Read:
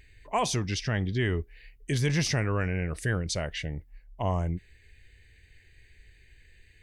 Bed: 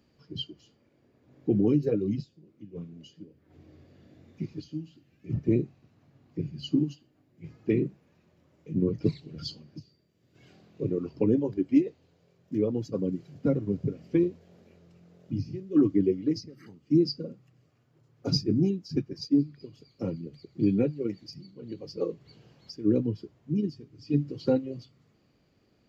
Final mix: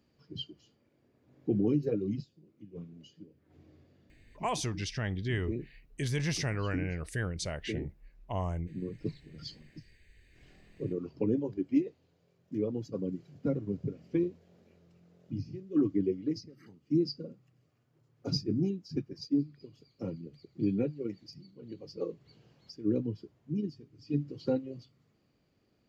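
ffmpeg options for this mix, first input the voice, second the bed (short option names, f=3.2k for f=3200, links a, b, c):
-filter_complex "[0:a]adelay=4100,volume=-5.5dB[a];[1:a]volume=2dB,afade=t=out:st=3.62:d=0.62:silence=0.421697,afade=t=in:st=8.88:d=0.76:silence=0.473151[b];[a][b]amix=inputs=2:normalize=0"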